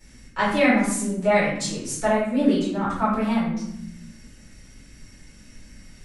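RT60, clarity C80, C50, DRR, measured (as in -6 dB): 0.85 s, 5.0 dB, 1.5 dB, -11.0 dB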